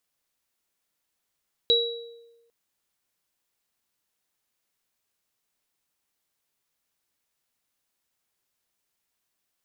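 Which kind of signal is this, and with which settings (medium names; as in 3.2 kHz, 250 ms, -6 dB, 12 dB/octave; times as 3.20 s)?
sine partials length 0.80 s, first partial 466 Hz, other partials 3.89 kHz, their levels 5.5 dB, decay 1.12 s, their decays 0.64 s, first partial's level -21 dB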